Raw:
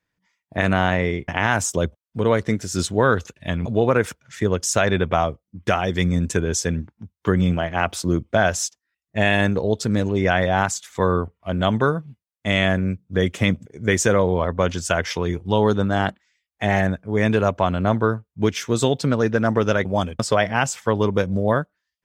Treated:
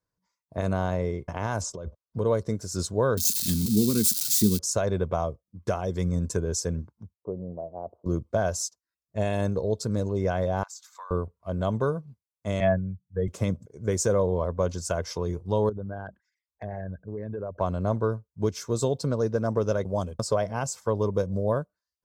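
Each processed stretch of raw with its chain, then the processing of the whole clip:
1.61–2.19 s: low-pass 4.5 kHz + compressor with a negative ratio -28 dBFS
3.17–4.59 s: zero-crossing glitches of -14.5 dBFS + FFT filter 150 Hz 0 dB, 210 Hz +15 dB, 380 Hz +1 dB, 610 Hz -26 dB, 3.6 kHz +11 dB, 5.6 kHz +5 dB
7.14–8.06 s: steep low-pass 710 Hz + tilt EQ +4.5 dB/octave
10.63–11.11 s: inverse Chebyshev high-pass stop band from 280 Hz, stop band 60 dB + peaking EQ 9.9 kHz -12 dB 0.45 oct + compression, threshold -32 dBFS
12.60–13.28 s: spectral contrast enhancement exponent 1.7 + high-order bell 1.4 kHz +11 dB 2.3 oct + three bands expanded up and down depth 100%
15.69–17.61 s: resonances exaggerated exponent 2 + peaking EQ 1.6 kHz +11 dB 0.25 oct + compression 5:1, threshold -24 dBFS
whole clip: high-order bell 2.4 kHz -12.5 dB 1.3 oct; comb 1.9 ms, depth 34%; dynamic bell 1.3 kHz, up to -5 dB, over -33 dBFS, Q 1.1; trim -6 dB

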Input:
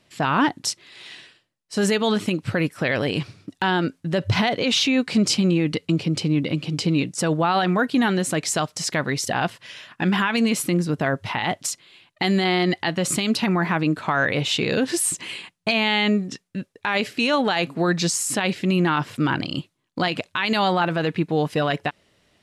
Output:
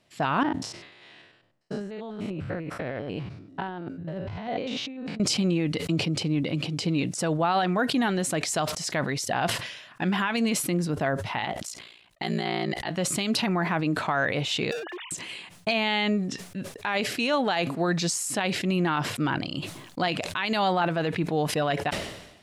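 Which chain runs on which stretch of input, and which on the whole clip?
0.43–5.20 s: spectrogram pixelated in time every 100 ms + low-pass 1.3 kHz 6 dB/octave + compressor with a negative ratio -29 dBFS
11.45–12.91 s: ring modulator 29 Hz + upward expansion, over -32 dBFS
14.71–15.11 s: formants replaced by sine waves + high-pass 460 Hz 24 dB/octave + hard clipper -29 dBFS
whole clip: peaking EQ 690 Hz +4 dB 0.56 oct; decay stretcher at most 61 dB/s; trim -5.5 dB

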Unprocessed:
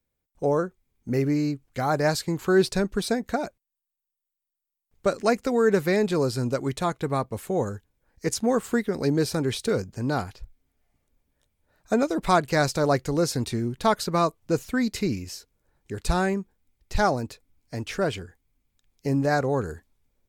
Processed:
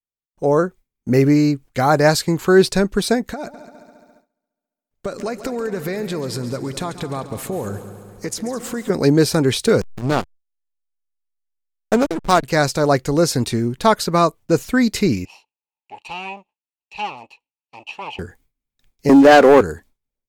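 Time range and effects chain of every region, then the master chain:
3.33–8.90 s: compression, threshold -33 dBFS + multi-head delay 69 ms, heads second and third, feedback 60%, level -14 dB
9.81–12.43 s: steep low-pass 8.8 kHz 72 dB/octave + treble shelf 3.6 kHz +8.5 dB + hysteresis with a dead band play -20 dBFS
15.25–18.19 s: comb filter that takes the minimum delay 0.71 ms + two resonant band-passes 1.5 kHz, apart 1.6 oct
19.09–19.61 s: high-pass 240 Hz 24 dB/octave + treble shelf 3.8 kHz -10.5 dB + waveshaping leveller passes 3
whole clip: gate with hold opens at -52 dBFS; peaking EQ 73 Hz -4.5 dB 1 oct; level rider gain up to 11 dB

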